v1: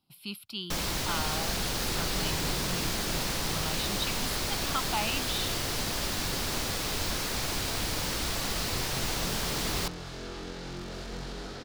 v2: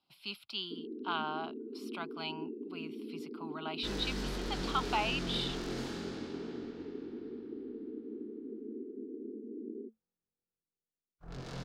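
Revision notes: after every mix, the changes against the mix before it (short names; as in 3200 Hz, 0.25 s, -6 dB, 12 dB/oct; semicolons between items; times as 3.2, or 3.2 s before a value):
speech: add three-band isolator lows -13 dB, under 320 Hz, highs -18 dB, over 5900 Hz; first sound: add Chebyshev band-pass 220–450 Hz, order 5; second sound: entry +2.60 s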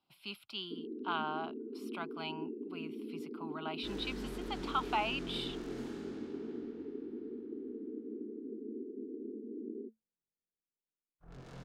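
second sound -7.0 dB; master: add bell 4600 Hz -6.5 dB 1 oct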